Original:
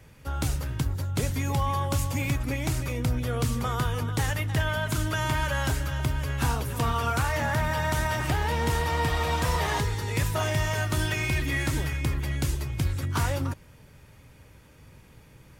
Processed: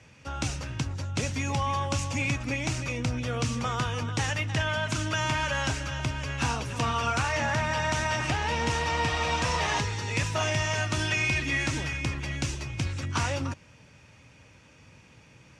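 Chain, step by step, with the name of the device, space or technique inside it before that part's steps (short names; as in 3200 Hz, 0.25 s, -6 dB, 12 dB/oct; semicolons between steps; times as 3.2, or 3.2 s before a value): car door speaker (speaker cabinet 96–7900 Hz, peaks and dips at 150 Hz -3 dB, 400 Hz -5 dB, 2600 Hz +7 dB, 5800 Hz +6 dB)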